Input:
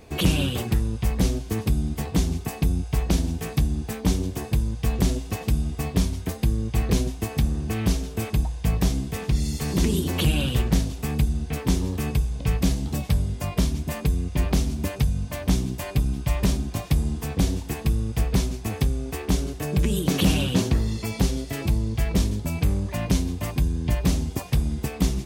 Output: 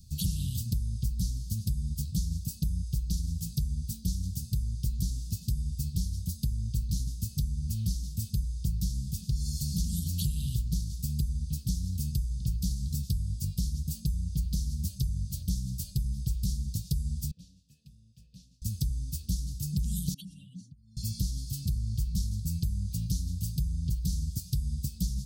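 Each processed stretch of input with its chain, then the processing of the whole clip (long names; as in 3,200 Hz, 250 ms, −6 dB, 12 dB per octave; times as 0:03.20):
0:17.31–0:18.62: formant filter e + high-shelf EQ 12,000 Hz +5.5 dB
0:20.14–0:20.97: expanding power law on the bin magnitudes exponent 2.2 + high-pass filter 550 Hz + parametric band 9,000 Hz +12.5 dB 0.41 octaves
whole clip: elliptic band-stop filter 170–4,500 Hz, stop band 40 dB; dynamic equaliser 160 Hz, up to −3 dB, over −34 dBFS, Q 1.7; downward compressor, threshold −26 dBFS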